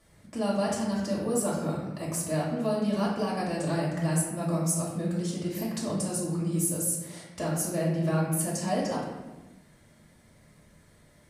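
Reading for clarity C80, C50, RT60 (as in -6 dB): 4.5 dB, 1.5 dB, 1.2 s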